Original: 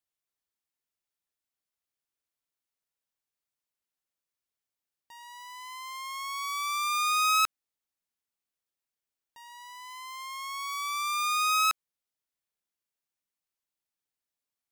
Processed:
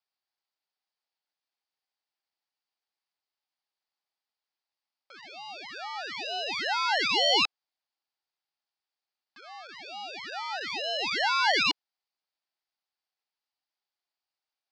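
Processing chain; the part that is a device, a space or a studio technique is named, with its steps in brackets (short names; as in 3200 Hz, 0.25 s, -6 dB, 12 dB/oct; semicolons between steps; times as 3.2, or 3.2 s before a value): voice changer toy (ring modulator with a swept carrier 1000 Hz, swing 85%, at 1.1 Hz; speaker cabinet 400–4900 Hz, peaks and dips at 490 Hz -4 dB, 800 Hz +7 dB, 4700 Hz +8 dB); gain +4 dB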